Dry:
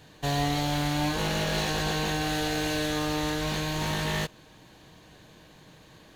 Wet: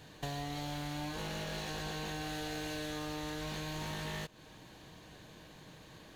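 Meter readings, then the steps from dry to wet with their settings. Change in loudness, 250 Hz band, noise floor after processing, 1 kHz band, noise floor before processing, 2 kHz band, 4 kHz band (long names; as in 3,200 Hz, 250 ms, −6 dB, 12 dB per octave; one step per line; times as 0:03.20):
−11.5 dB, −11.5 dB, −56 dBFS, −12.0 dB, −54 dBFS, −11.5 dB, −11.5 dB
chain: downward compressor 6 to 1, threshold −36 dBFS, peak gain reduction 12.5 dB
level −1.5 dB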